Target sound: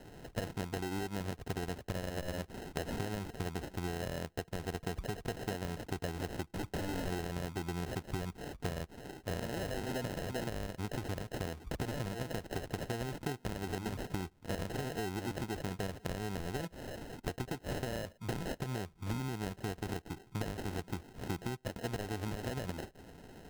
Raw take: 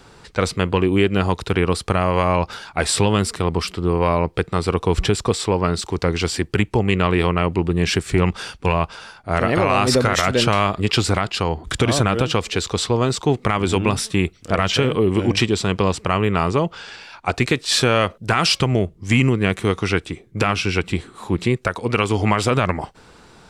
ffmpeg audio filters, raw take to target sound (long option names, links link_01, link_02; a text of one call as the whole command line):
ffmpeg -i in.wav -filter_complex "[0:a]acrusher=samples=38:mix=1:aa=0.000001,asplit=3[link_01][link_02][link_03];[link_01]afade=type=out:start_time=6.48:duration=0.02[link_04];[link_02]aeval=exprs='0.0794*(abs(mod(val(0)/0.0794+3,4)-2)-1)':channel_layout=same,afade=type=in:start_time=6.48:duration=0.02,afade=type=out:start_time=7.06:duration=0.02[link_05];[link_03]afade=type=in:start_time=7.06:duration=0.02[link_06];[link_04][link_05][link_06]amix=inputs=3:normalize=0,acompressor=threshold=-28dB:ratio=16,volume=-6dB" out.wav